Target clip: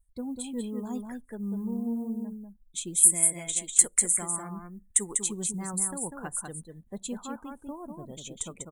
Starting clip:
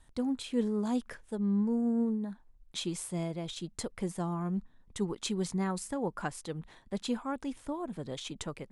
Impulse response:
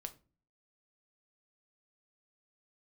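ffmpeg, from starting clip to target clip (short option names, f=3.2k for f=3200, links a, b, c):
-filter_complex "[0:a]asettb=1/sr,asplit=3[a][b][c];[a]atrim=end=3.034[d];[b]atrim=start=3.03:end=5.13,asetpts=PTS-STARTPTS,afade=t=in:d=0.004:c=qsin,afade=t=out:st=2.096:d=0.004:c=qsin,equalizer=f=125:t=o:w=1:g=-9,equalizer=f=2k:t=o:w=1:g=12,equalizer=f=8k:t=o:w=1:g=11[e];[c]atrim=start=5.126[f];[d][e]acrossfade=d=0.004:c1=hsin:c2=qsin[g];[g][f]acrossfade=d=0.004:c1=qsin:c2=hsin,acrusher=bits=7:mode=log:mix=0:aa=0.000001,aecho=1:1:196:0.596,asplit=2[h][i];[1:a]atrim=start_sample=2205,asetrate=57330,aresample=44100[j];[i][j]afir=irnorm=-1:irlink=0,volume=-11.5dB[k];[h][k]amix=inputs=2:normalize=0,afftdn=nr=27:nf=-45,adynamicequalizer=threshold=0.00562:dfrequency=460:dqfactor=1.7:tfrequency=460:tqfactor=1.7:attack=5:release=100:ratio=0.375:range=2.5:mode=cutabove:tftype=bell,aexciter=amount=12.6:drive=6.2:freq=7.3k,volume=-4.5dB"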